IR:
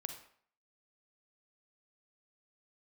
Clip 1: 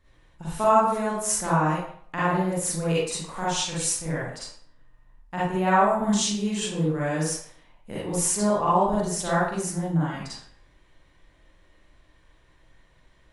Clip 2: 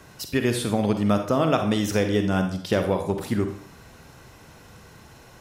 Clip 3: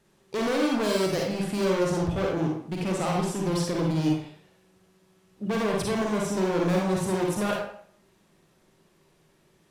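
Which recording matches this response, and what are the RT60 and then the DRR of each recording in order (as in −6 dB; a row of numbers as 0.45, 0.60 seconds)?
2; 0.55, 0.55, 0.55 seconds; −8.5, 6.0, −1.5 decibels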